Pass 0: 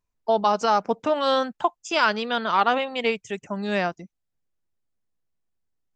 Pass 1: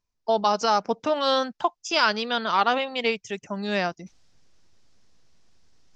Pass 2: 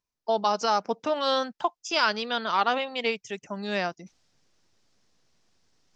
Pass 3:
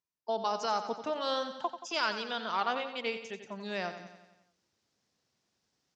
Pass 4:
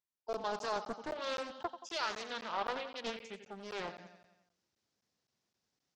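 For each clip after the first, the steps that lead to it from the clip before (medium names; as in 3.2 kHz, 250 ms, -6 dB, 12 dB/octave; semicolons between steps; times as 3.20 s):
reverse; upward compressor, threshold -36 dBFS; reverse; resonant low-pass 5.5 kHz, resonance Q 2.5; trim -1.5 dB
bass shelf 84 Hz -11 dB; trim -2.5 dB
high-pass 81 Hz; on a send: feedback delay 89 ms, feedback 57%, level -10.5 dB; on the sum: trim -7.5 dB
crackling interface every 0.26 s, samples 512, zero, from 0.33 s; loudspeaker Doppler distortion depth 0.63 ms; trim -5.5 dB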